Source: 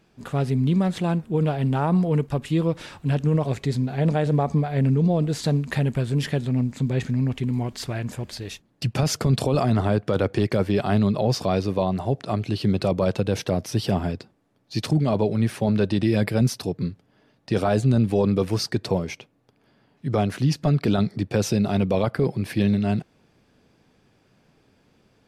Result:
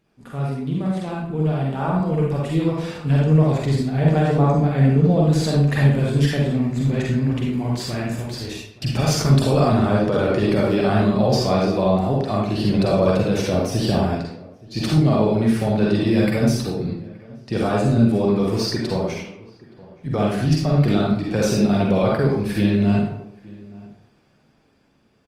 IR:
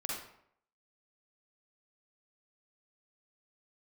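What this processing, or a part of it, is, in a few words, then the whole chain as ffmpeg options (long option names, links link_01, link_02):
speakerphone in a meeting room: -filter_complex "[0:a]asplit=2[link_01][link_02];[link_02]adelay=874.6,volume=-21dB,highshelf=frequency=4000:gain=-19.7[link_03];[link_01][link_03]amix=inputs=2:normalize=0[link_04];[1:a]atrim=start_sample=2205[link_05];[link_04][link_05]afir=irnorm=-1:irlink=0,dynaudnorm=framelen=340:gausssize=13:maxgain=11.5dB,volume=-4dB" -ar 48000 -c:a libopus -b:a 32k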